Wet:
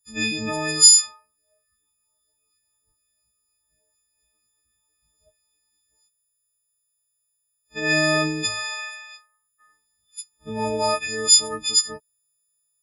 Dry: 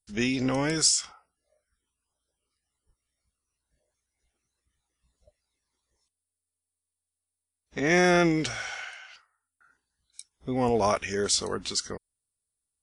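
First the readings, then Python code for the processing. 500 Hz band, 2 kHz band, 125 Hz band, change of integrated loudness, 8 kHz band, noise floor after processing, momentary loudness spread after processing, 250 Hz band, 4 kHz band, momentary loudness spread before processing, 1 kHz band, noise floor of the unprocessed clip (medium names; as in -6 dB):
0.0 dB, +4.5 dB, -1.0 dB, +7.0 dB, +11.5 dB, -75 dBFS, 22 LU, -2.0 dB, +10.5 dB, 19 LU, +1.0 dB, under -85 dBFS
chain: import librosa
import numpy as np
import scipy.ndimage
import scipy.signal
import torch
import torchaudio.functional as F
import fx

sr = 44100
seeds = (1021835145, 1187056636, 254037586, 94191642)

y = fx.freq_snap(x, sr, grid_st=6)
y = fx.spec_box(y, sr, start_s=5.69, length_s=0.22, low_hz=330.0, high_hz=1700.0, gain_db=-9)
y = y * librosa.db_to_amplitude(-2.0)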